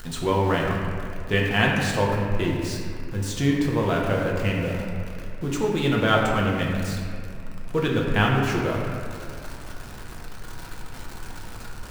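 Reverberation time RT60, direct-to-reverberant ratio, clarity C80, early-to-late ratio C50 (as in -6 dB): 2.3 s, -2.5 dB, 2.0 dB, 1.0 dB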